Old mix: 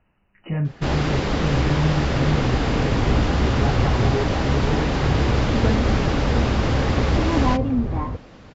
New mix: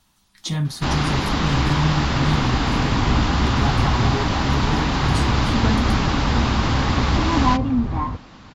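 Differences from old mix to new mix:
speech: remove brick-wall FIR low-pass 3000 Hz; master: add graphic EQ 250/500/1000/4000/8000 Hz +3/-8/+7/+5/+3 dB

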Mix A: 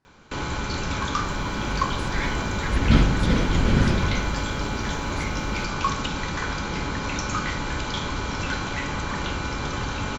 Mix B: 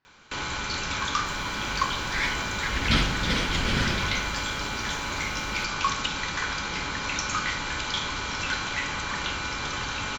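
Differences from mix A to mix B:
speech: add air absorption 200 m; first sound: add high shelf 3600 Hz -7.5 dB; master: add tilt shelf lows -8.5 dB, about 1200 Hz

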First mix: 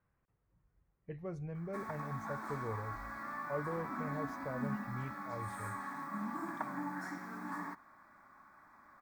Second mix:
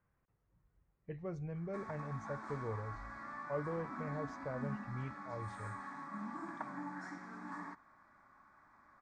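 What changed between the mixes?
background -4.0 dB; master: add LPF 7600 Hz 24 dB/oct

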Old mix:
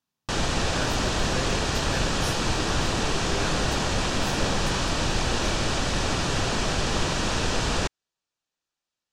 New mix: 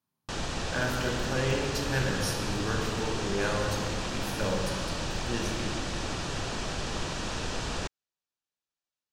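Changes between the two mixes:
speech: send +8.0 dB; background -8.0 dB

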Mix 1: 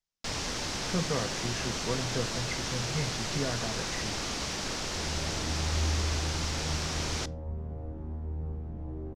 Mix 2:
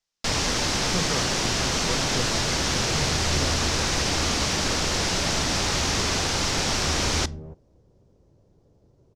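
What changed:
first sound +9.5 dB; second sound: entry -2.50 s

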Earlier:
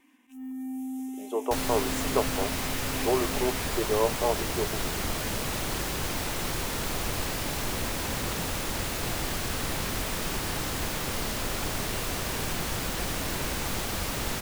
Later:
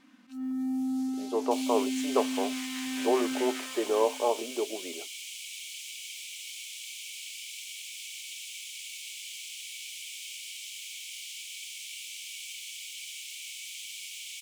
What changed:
first sound: remove fixed phaser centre 910 Hz, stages 8; second sound: add rippled Chebyshev high-pass 2200 Hz, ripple 6 dB; master: add high shelf 9700 Hz -11.5 dB

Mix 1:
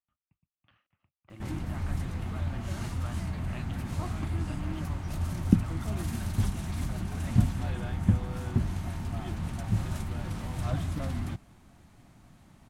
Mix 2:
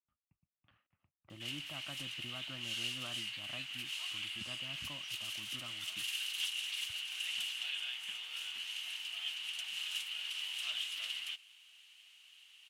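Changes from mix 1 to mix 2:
speech -4.0 dB; background: add resonant high-pass 2900 Hz, resonance Q 12

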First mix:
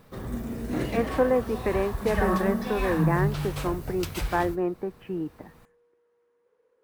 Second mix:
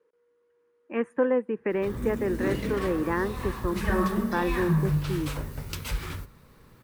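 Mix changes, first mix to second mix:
background: entry +1.70 s; master: add bell 710 Hz -10.5 dB 0.35 oct

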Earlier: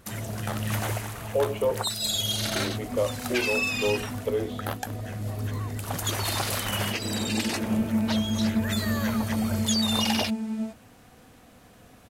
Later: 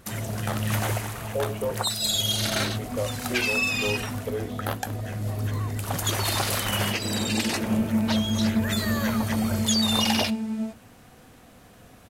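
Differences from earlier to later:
speech -4.5 dB; reverb: on, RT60 0.60 s

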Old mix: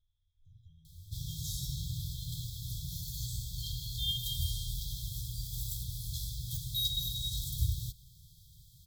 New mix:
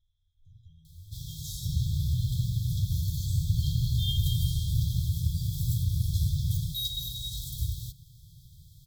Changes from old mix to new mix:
speech +4.0 dB; second sound: unmuted

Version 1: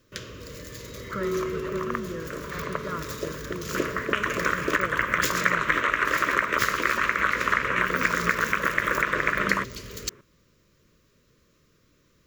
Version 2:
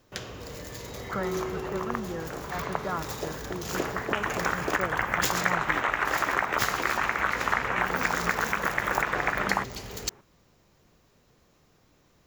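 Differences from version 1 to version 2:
second sound -4.0 dB; master: remove Butterworth band-stop 790 Hz, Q 1.7

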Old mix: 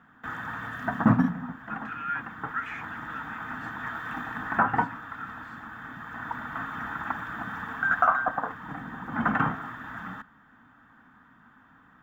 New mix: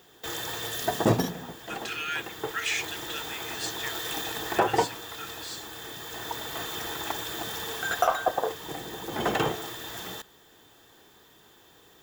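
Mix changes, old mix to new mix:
speech +5.5 dB; master: remove EQ curve 110 Hz 0 dB, 260 Hz +10 dB, 370 Hz -18 dB, 1400 Hz +10 dB, 4000 Hz -24 dB, 11000 Hz -29 dB

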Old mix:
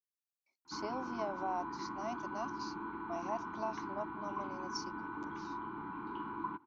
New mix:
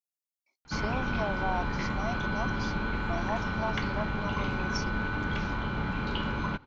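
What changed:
speech +5.0 dB; background: remove double band-pass 570 Hz, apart 1.6 oct

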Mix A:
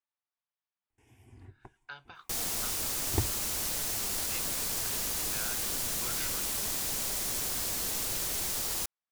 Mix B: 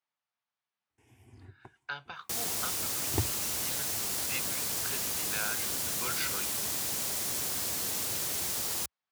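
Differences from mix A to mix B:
speech +7.0 dB; master: add HPF 70 Hz 24 dB/oct

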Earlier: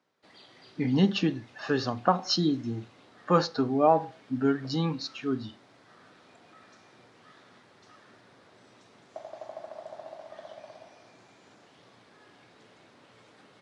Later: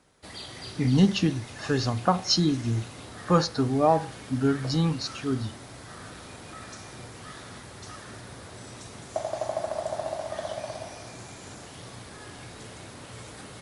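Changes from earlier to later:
background +11.5 dB; master: remove BPF 200–4300 Hz

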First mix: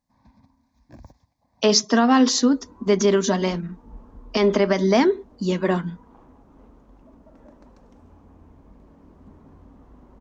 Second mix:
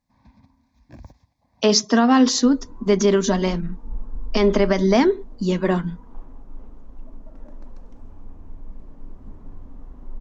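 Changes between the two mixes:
first sound: add bell 2700 Hz +6.5 dB 1.1 oct; second sound: remove HPF 45 Hz 24 dB/oct; master: add low shelf 190 Hz +4.5 dB

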